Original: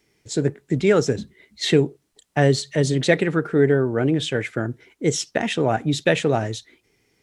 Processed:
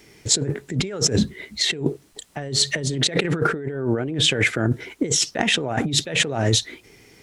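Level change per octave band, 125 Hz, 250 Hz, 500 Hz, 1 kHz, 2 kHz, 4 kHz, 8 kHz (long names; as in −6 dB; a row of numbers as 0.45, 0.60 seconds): −1.5, −3.0, −6.5, −2.0, +1.5, +8.0, +9.0 decibels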